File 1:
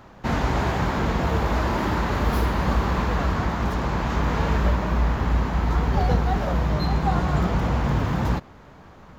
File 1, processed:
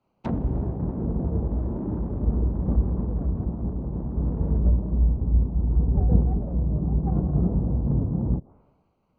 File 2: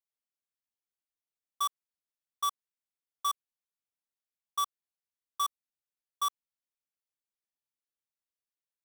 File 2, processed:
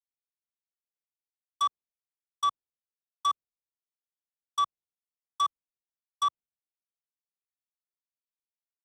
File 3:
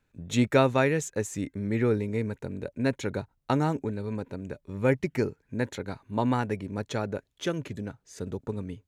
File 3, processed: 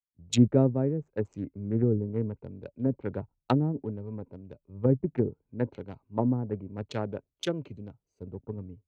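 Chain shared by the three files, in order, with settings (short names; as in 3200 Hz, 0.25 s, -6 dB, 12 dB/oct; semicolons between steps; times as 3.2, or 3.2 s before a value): Wiener smoothing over 25 samples; treble ducked by the level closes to 360 Hz, closed at -21.5 dBFS; three-band expander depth 100%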